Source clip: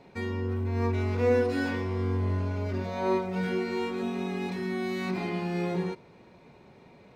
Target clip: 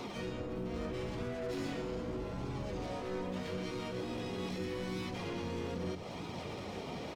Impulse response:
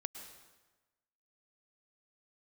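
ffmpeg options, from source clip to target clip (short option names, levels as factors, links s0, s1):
-filter_complex "[0:a]equalizer=f=1400:t=o:w=1.2:g=-14.5,asplit=2[s0][s1];[s1]highpass=f=720:p=1,volume=20,asoftclip=type=tanh:threshold=0.168[s2];[s0][s2]amix=inputs=2:normalize=0,lowpass=f=6800:p=1,volume=0.501,acompressor=threshold=0.0141:ratio=12,alimiter=level_in=5.01:limit=0.0631:level=0:latency=1:release=19,volume=0.2,acrossover=split=460[s3][s4];[s4]acompressor=threshold=0.00447:ratio=2[s5];[s3][s5]amix=inputs=2:normalize=0,asplit=4[s6][s7][s8][s9];[s7]asetrate=22050,aresample=44100,atempo=2,volume=0.562[s10];[s8]asetrate=35002,aresample=44100,atempo=1.25992,volume=0.501[s11];[s9]asetrate=58866,aresample=44100,atempo=0.749154,volume=0.794[s12];[s6][s10][s11][s12]amix=inputs=4:normalize=0,flanger=delay=0.8:depth=3.8:regen=-50:speed=0.8:shape=sinusoidal,asplit=2[s13][s14];[s14]lowshelf=f=200:t=q:w=1.5:g=14[s15];[1:a]atrim=start_sample=2205,adelay=90[s16];[s15][s16]afir=irnorm=-1:irlink=0,volume=0.237[s17];[s13][s17]amix=inputs=2:normalize=0,volume=1.68"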